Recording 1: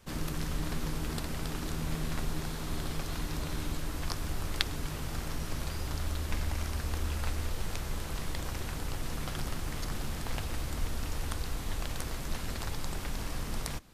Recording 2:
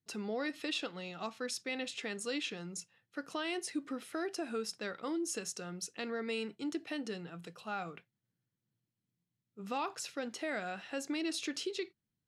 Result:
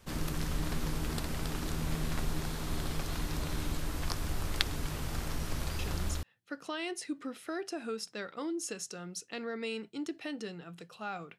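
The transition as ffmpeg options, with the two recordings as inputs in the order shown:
-filter_complex "[0:a]apad=whole_dur=11.38,atrim=end=11.38,atrim=end=6.23,asetpts=PTS-STARTPTS[a];[1:a]atrim=start=2.45:end=8.04,asetpts=PTS-STARTPTS[b];[a][b]acrossfade=d=0.44:c1=log:c2=log"

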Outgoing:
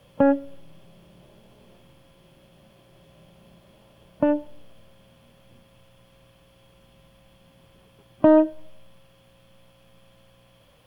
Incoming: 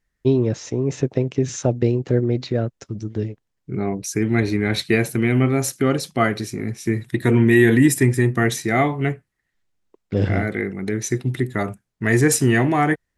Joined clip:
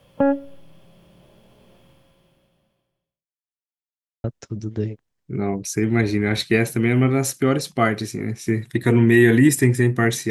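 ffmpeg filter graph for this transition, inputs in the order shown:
-filter_complex "[0:a]apad=whole_dur=10.3,atrim=end=10.3,asplit=2[a][b];[a]atrim=end=3.3,asetpts=PTS-STARTPTS,afade=t=out:st=1.9:d=1.4:c=qua[c];[b]atrim=start=3.3:end=4.24,asetpts=PTS-STARTPTS,volume=0[d];[1:a]atrim=start=2.63:end=8.69,asetpts=PTS-STARTPTS,afade=t=in:d=0.004:c=hsin[e];[c][d][e]concat=n=3:v=0:a=1"

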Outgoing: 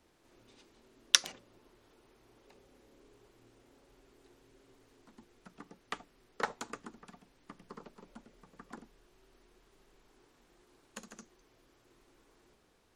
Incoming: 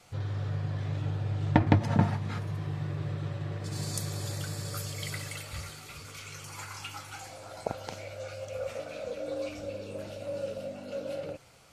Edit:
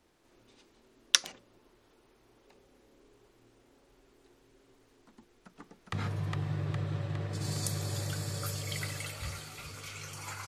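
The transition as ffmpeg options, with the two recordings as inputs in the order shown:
-filter_complex "[0:a]apad=whole_dur=10.47,atrim=end=10.47,atrim=end=5.932[a];[1:a]atrim=start=2.238:end=6.78[b];[a][b]acrossfade=d=0.004:c1=hsin:c2=hsin,asplit=2[c][d];[d]afade=t=in:st=5.14:d=0.01,afade=t=out:st=5.93:d=0.01,aecho=0:1:410|820|1230|1640|2050|2460|2870|3280|3690:0.794328|0.476597|0.285958|0.171575|0.102945|0.061767|0.0370602|0.0222361|0.0133417[e];[c][e]amix=inputs=2:normalize=0"

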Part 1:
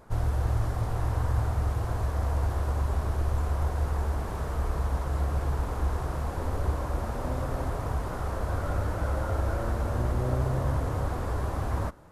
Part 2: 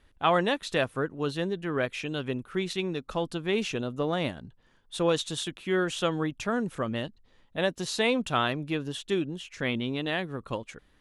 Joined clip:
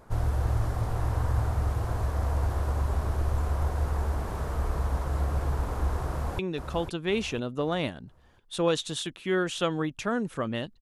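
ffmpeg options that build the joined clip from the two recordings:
-filter_complex "[0:a]apad=whole_dur=10.81,atrim=end=10.81,atrim=end=6.392[a];[1:a]atrim=start=2.798:end=7.22[b];[a][b]acrossfade=d=0.004:c1=hsin:c2=hsin,asplit=2[c][d];[d]afade=t=in:st=6.07:d=0.01,afade=t=out:st=6.39:d=0.01,aecho=0:1:500|1000|1500|2000|2500:0.446684|0.178673|0.0714694|0.0285877|0.0114351[e];[c][e]amix=inputs=2:normalize=0"

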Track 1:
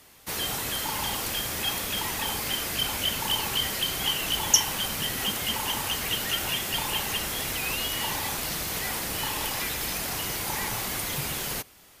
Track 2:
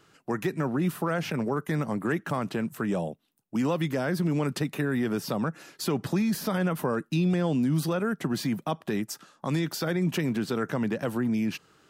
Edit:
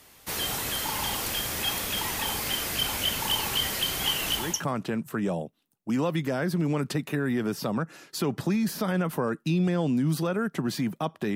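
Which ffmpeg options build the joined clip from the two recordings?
-filter_complex "[0:a]apad=whole_dur=11.35,atrim=end=11.35,atrim=end=4.64,asetpts=PTS-STARTPTS[a];[1:a]atrim=start=1.98:end=9.01,asetpts=PTS-STARTPTS[b];[a][b]acrossfade=d=0.32:c1=tri:c2=tri"

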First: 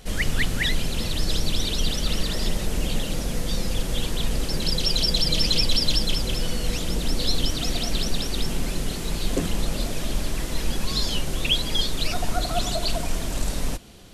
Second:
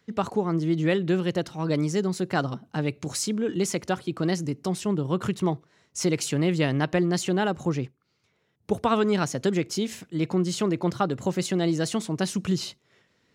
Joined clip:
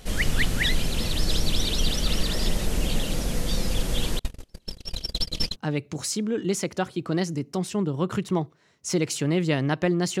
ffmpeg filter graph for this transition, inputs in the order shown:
-filter_complex "[0:a]asettb=1/sr,asplit=3[a][b][c];[a]atrim=end=4.194[d];[b]atrim=start=4.19:end=5.56,asetpts=PTS-STARTPTS,afade=t=in:d=0.004:c=qsin,afade=t=out:st=1.366:d=0.004:c=qsin,agate=range=-40dB:threshold=-19dB:ratio=16:release=100:detection=peak[e];[c]atrim=start=5.556[f];[d][e]acrossfade=d=0.004:c1=hsin:c2=qsin[g];[g][f]acrossfade=d=0.004:c1=qsin:c2=hsin,apad=whole_dur=10.2,atrim=end=10.2,atrim=end=5.56,asetpts=PTS-STARTPTS[h];[1:a]atrim=start=2.61:end=7.31,asetpts=PTS-STARTPTS[i];[h][i]acrossfade=d=0.06:c1=tri:c2=tri"

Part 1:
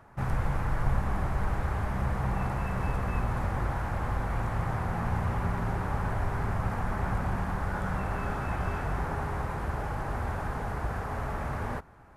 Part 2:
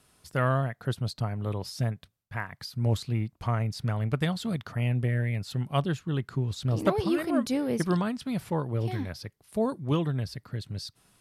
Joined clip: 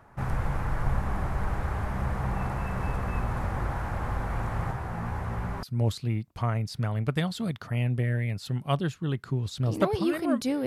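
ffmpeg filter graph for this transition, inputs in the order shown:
-filter_complex "[0:a]asplit=3[a][b][c];[a]afade=t=out:st=4.71:d=0.02[d];[b]flanger=delay=15:depth=2.9:speed=2.7,afade=t=in:st=4.71:d=0.02,afade=t=out:st=5.63:d=0.02[e];[c]afade=t=in:st=5.63:d=0.02[f];[d][e][f]amix=inputs=3:normalize=0,apad=whole_dur=10.66,atrim=end=10.66,atrim=end=5.632[g];[1:a]atrim=start=2.678:end=7.71[h];[g][h]acrossfade=d=0.004:c1=hsin:c2=hsin"

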